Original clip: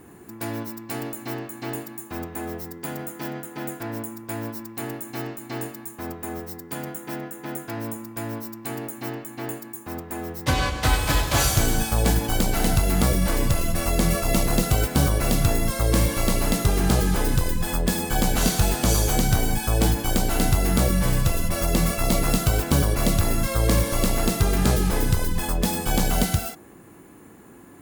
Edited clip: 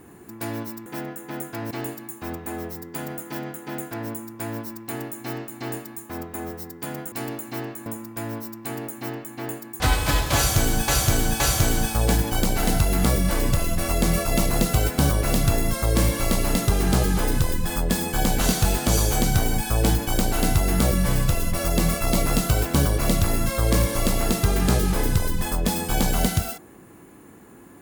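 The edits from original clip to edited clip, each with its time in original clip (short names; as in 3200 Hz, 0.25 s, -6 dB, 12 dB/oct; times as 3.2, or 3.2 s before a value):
0.86–1.6 swap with 7.01–7.86
9.8–10.81 cut
11.37–11.89 loop, 3 plays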